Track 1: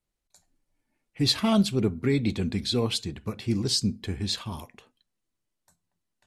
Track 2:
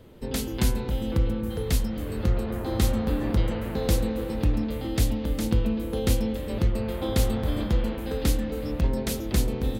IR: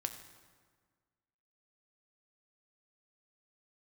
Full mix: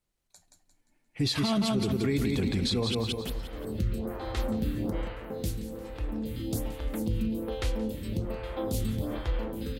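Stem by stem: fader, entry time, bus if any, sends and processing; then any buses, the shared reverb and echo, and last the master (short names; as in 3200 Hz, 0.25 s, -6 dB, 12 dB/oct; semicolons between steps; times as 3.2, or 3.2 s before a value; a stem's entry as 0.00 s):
+2.0 dB, 0.00 s, muted 2.95–5.47, no send, echo send -4.5 dB, dry
-3.5 dB, 1.55 s, send -10 dB, echo send -16.5 dB, photocell phaser 1.2 Hz; auto duck -12 dB, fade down 0.75 s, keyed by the first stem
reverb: on, RT60 1.6 s, pre-delay 4 ms
echo: feedback echo 0.175 s, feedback 37%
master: limiter -19.5 dBFS, peak gain reduction 11.5 dB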